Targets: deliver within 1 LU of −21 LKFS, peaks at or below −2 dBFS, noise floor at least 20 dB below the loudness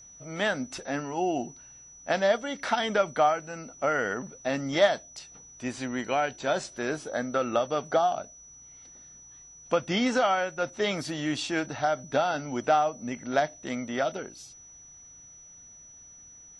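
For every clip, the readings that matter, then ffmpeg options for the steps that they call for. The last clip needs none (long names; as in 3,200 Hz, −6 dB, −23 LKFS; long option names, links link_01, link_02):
interfering tone 5,900 Hz; level of the tone −48 dBFS; integrated loudness −28.5 LKFS; sample peak −10.5 dBFS; target loudness −21.0 LKFS
→ -af "bandreject=frequency=5900:width=30"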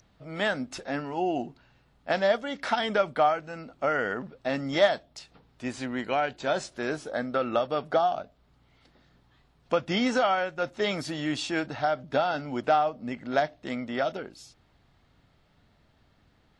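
interfering tone none found; integrated loudness −28.5 LKFS; sample peak −10.5 dBFS; target loudness −21.0 LKFS
→ -af "volume=7.5dB"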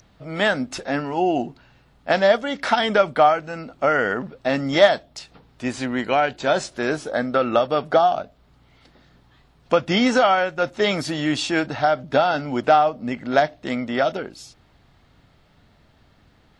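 integrated loudness −21.0 LKFS; sample peak −3.0 dBFS; background noise floor −57 dBFS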